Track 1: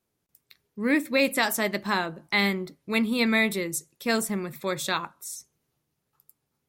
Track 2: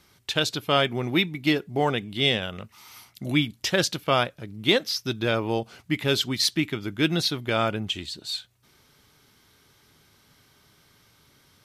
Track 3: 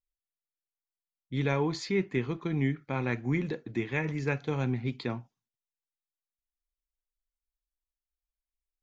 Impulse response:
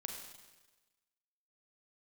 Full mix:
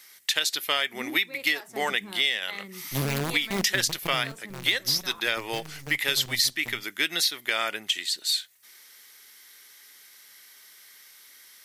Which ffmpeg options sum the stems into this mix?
-filter_complex "[0:a]lowpass=8100,acrossover=split=430[link_01][link_02];[link_01]aeval=exprs='val(0)*(1-1/2+1/2*cos(2*PI*1.1*n/s))':channel_layout=same[link_03];[link_02]aeval=exprs='val(0)*(1-1/2-1/2*cos(2*PI*1.1*n/s))':channel_layout=same[link_04];[link_03][link_04]amix=inputs=2:normalize=0,adelay=150,volume=-5dB[link_05];[1:a]highpass=390,equalizer=frequency=1900:width=3.3:gain=12,crystalizer=i=6.5:c=0,volume=-5.5dB,asplit=2[link_06][link_07];[2:a]bass=frequency=250:gain=11,treble=frequency=4000:gain=9,acrusher=bits=4:dc=4:mix=0:aa=0.000001,adelay=1600,volume=-7dB,afade=type=out:start_time=3.98:duration=0.25:silence=0.354813[link_08];[link_07]apad=whole_len=301545[link_09];[link_05][link_09]sidechaincompress=threshold=-22dB:ratio=8:attack=43:release=1080[link_10];[link_10][link_06][link_08]amix=inputs=3:normalize=0,acompressor=threshold=-21dB:ratio=6"

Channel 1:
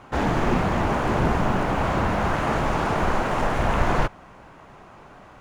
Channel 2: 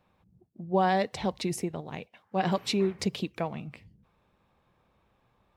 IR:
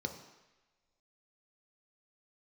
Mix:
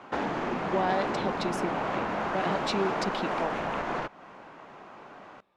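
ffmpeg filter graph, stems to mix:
-filter_complex "[0:a]highshelf=frequency=9700:gain=-5,acompressor=threshold=-27dB:ratio=3,volume=0dB[link_01];[1:a]alimiter=limit=-19.5dB:level=0:latency=1,volume=0dB[link_02];[link_01][link_02]amix=inputs=2:normalize=0,acrossover=split=180 6500:gain=0.112 1 0.251[link_03][link_04][link_05];[link_03][link_04][link_05]amix=inputs=3:normalize=0"

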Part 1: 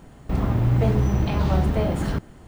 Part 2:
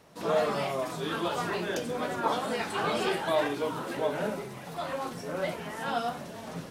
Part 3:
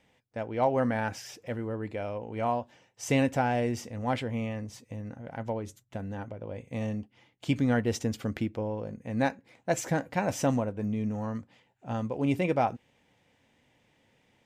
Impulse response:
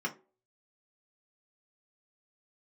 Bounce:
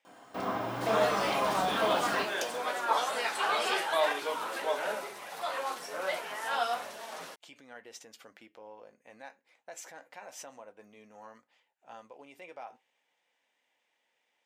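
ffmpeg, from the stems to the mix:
-filter_complex "[0:a]adelay=50,volume=0dB,asplit=3[link_01][link_02][link_03];[link_02]volume=-4.5dB[link_04];[link_03]volume=-11dB[link_05];[1:a]adelay=650,volume=2.5dB[link_06];[2:a]flanger=delay=6:depth=2.6:regen=-75:speed=0.75:shape=sinusoidal,alimiter=level_in=5.5dB:limit=-24dB:level=0:latency=1:release=106,volume=-5.5dB,volume=-3dB[link_07];[3:a]atrim=start_sample=2205[link_08];[link_04][link_08]afir=irnorm=-1:irlink=0[link_09];[link_05]aecho=0:1:360|720|1080|1440|1800:1|0.39|0.152|0.0593|0.0231[link_10];[link_01][link_06][link_07][link_09][link_10]amix=inputs=5:normalize=0,highpass=690"

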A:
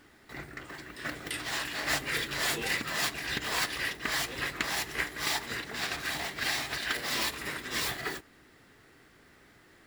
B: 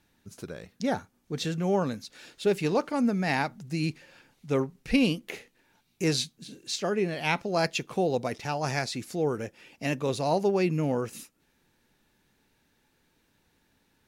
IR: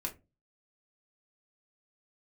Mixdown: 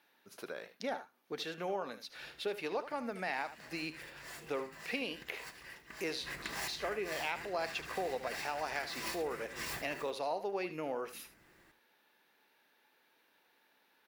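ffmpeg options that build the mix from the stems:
-filter_complex "[0:a]equalizer=frequency=3600:width_type=o:width=0.43:gain=-7,adelay=1850,volume=-9dB,afade=type=in:start_time=6.08:duration=0.27:silence=0.266073,asplit=3[link_01][link_02][link_03];[link_02]volume=-7.5dB[link_04];[link_03]volume=-11dB[link_05];[1:a]highpass=540,acompressor=threshold=-39dB:ratio=3,equalizer=frequency=7500:width_type=o:width=0.93:gain=-14,volume=2.5dB,asplit=3[link_06][link_07][link_08];[link_07]volume=-13dB[link_09];[link_08]apad=whole_len=516633[link_10];[link_01][link_10]sidechaincompress=threshold=-51dB:ratio=8:attack=9.5:release=113[link_11];[2:a]atrim=start_sample=2205[link_12];[link_04][link_12]afir=irnorm=-1:irlink=0[link_13];[link_05][link_09]amix=inputs=2:normalize=0,aecho=0:1:76:1[link_14];[link_11][link_06][link_13][link_14]amix=inputs=4:normalize=0"

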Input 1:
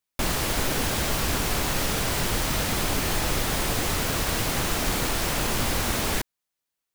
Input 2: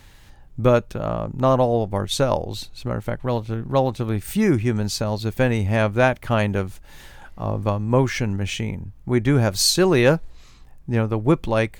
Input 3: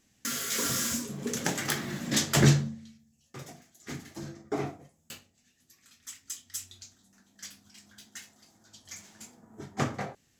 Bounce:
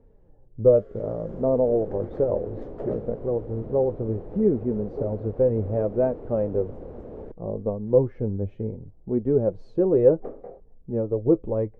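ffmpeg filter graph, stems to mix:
ffmpeg -i stem1.wav -i stem2.wav -i stem3.wav -filter_complex "[0:a]alimiter=limit=-23dB:level=0:latency=1:release=274,adelay=1100,volume=-6dB[link_01];[1:a]flanger=delay=4.3:depth=5.7:regen=40:speed=0.65:shape=sinusoidal,volume=-4dB[link_02];[2:a]highpass=370,adelay=450,volume=-6.5dB[link_03];[link_01][link_02][link_03]amix=inputs=3:normalize=0,lowpass=frequency=480:width_type=q:width=3.6" out.wav

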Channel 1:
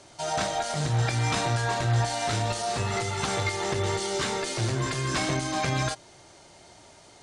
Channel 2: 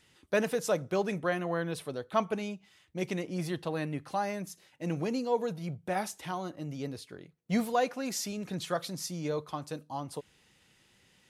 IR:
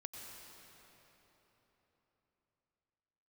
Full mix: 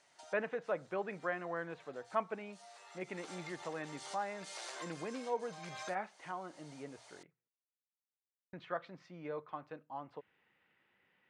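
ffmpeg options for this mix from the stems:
-filter_complex "[0:a]highpass=frequency=580:width=0.5412,highpass=frequency=580:width=1.3066,acompressor=threshold=-36dB:ratio=12,volume=-5.5dB,afade=type=in:start_time=2.96:duration=0.31:silence=0.266073[link_01];[1:a]lowpass=frequency=2100:width=0.5412,lowpass=frequency=2100:width=1.3066,aemphasis=mode=production:type=riaa,bandreject=frequency=60:width_type=h:width=6,bandreject=frequency=120:width_type=h:width=6,volume=-5.5dB,asplit=3[link_02][link_03][link_04];[link_02]atrim=end=7.48,asetpts=PTS-STARTPTS,afade=type=out:start_time=7.476:duration=0.004:curve=hsin[link_05];[link_03]atrim=start=7.48:end=8.53,asetpts=PTS-STARTPTS,volume=0[link_06];[link_04]atrim=start=8.53,asetpts=PTS-STARTPTS,afade=type=in:duration=0.004:curve=hsin[link_07];[link_05][link_06][link_07]concat=n=3:v=0:a=1,asplit=2[link_08][link_09];[link_09]apad=whole_len=318794[link_10];[link_01][link_10]sidechaincompress=threshold=-48dB:ratio=8:attack=26:release=300[link_11];[link_11][link_08]amix=inputs=2:normalize=0"

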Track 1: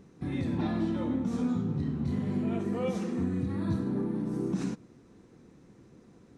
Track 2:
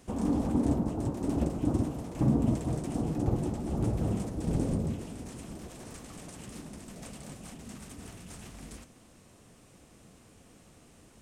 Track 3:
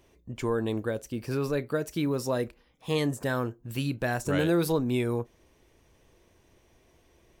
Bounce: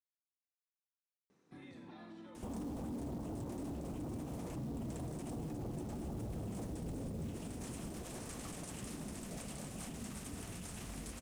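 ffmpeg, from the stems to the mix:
ffmpeg -i stem1.wav -i stem2.wav -filter_complex "[0:a]highpass=frequency=560:poles=1,alimiter=level_in=10dB:limit=-24dB:level=0:latency=1:release=154,volume=-10dB,adelay=1300,volume=-10.5dB[link_01];[1:a]equalizer=frequency=11000:width=1.5:gain=4,alimiter=level_in=1.5dB:limit=-24dB:level=0:latency=1:release=18,volume=-1.5dB,acrusher=bits=6:mode=log:mix=0:aa=0.000001,adelay=2350,volume=1.5dB[link_02];[link_01][link_02]amix=inputs=2:normalize=0,alimiter=level_in=11.5dB:limit=-24dB:level=0:latency=1:release=77,volume=-11.5dB" out.wav

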